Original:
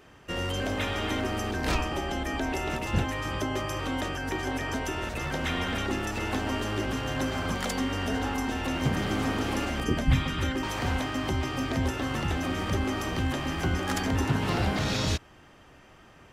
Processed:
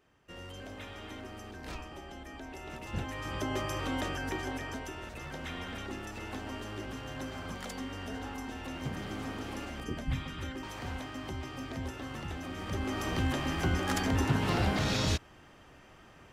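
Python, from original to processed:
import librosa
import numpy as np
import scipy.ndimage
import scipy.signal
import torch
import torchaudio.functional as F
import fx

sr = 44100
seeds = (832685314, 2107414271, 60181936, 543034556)

y = fx.gain(x, sr, db=fx.line((2.51, -15.0), (3.54, -3.0), (4.21, -3.0), (4.96, -10.5), (12.51, -10.5), (13.12, -2.0)))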